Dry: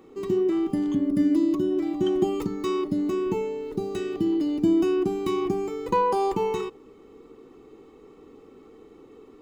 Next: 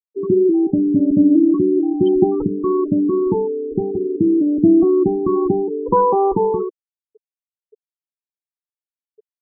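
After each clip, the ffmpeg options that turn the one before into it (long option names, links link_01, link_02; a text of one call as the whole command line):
ffmpeg -i in.wav -af "lowpass=frequency=1400:poles=1,afftfilt=real='re*gte(hypot(re,im),0.0501)':imag='im*gte(hypot(re,im),0.0501)':win_size=1024:overlap=0.75,volume=9dB" out.wav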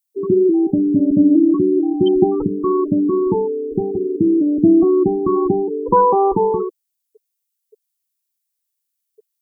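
ffmpeg -i in.wav -af "crystalizer=i=6:c=0" out.wav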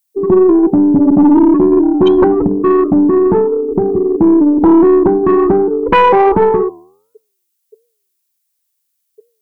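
ffmpeg -i in.wav -af "flanger=delay=9.3:depth=3.9:regen=-88:speed=1.4:shape=triangular,aeval=exprs='0.531*sin(PI/2*2.24*val(0)/0.531)':channel_layout=same,aeval=exprs='0.562*(cos(1*acos(clip(val(0)/0.562,-1,1)))-cos(1*PI/2))+0.0355*(cos(2*acos(clip(val(0)/0.562,-1,1)))-cos(2*PI/2))+0.00501*(cos(5*acos(clip(val(0)/0.562,-1,1)))-cos(5*PI/2))':channel_layout=same,volume=1.5dB" out.wav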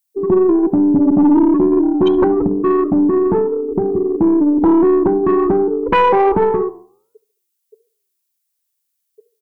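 ffmpeg -i in.wav -filter_complex "[0:a]asplit=2[link_01][link_02];[link_02]adelay=71,lowpass=frequency=2000:poles=1,volume=-19dB,asplit=2[link_03][link_04];[link_04]adelay=71,lowpass=frequency=2000:poles=1,volume=0.44,asplit=2[link_05][link_06];[link_06]adelay=71,lowpass=frequency=2000:poles=1,volume=0.44[link_07];[link_01][link_03][link_05][link_07]amix=inputs=4:normalize=0,volume=-4dB" out.wav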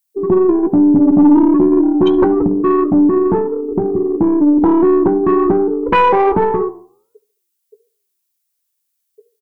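ffmpeg -i in.wav -filter_complex "[0:a]asplit=2[link_01][link_02];[link_02]adelay=17,volume=-11.5dB[link_03];[link_01][link_03]amix=inputs=2:normalize=0,volume=1dB" out.wav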